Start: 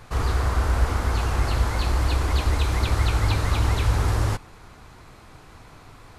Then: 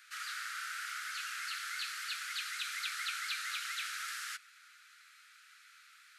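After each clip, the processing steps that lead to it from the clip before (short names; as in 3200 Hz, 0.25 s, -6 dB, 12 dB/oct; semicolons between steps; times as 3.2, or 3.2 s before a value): steep high-pass 1300 Hz 96 dB/oct; gain -5 dB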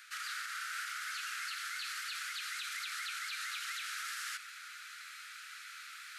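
reverse; upward compressor, threshold -42 dBFS; reverse; limiter -34 dBFS, peak gain reduction 9.5 dB; gain +2.5 dB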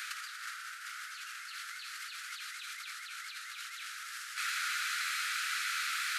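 negative-ratio compressor -47 dBFS, ratio -0.5; gain +8.5 dB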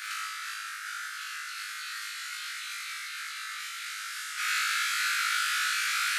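flutter echo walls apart 3.3 m, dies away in 1 s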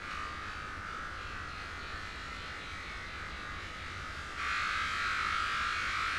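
added noise pink -45 dBFS; frequency shift -93 Hz; tape spacing loss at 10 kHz 23 dB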